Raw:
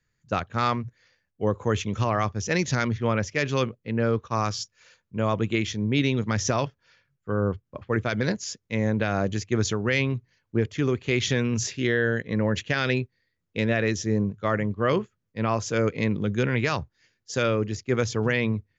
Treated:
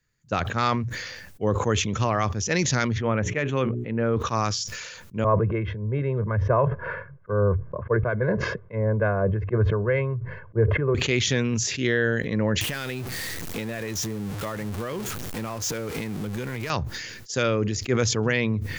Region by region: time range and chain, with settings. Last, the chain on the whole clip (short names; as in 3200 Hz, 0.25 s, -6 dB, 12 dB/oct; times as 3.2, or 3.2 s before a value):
3.01–4.17 running mean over 9 samples + notches 60/120/180/240/300/360/420 Hz
5.24–10.95 LPF 1500 Hz 24 dB/oct + comb 1.9 ms, depth 75% + three-band expander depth 70%
12.61–16.7 zero-crossing step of -27 dBFS + compressor 10:1, threshold -27 dBFS
whole clip: high shelf 6600 Hz +6 dB; sustainer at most 39 dB/s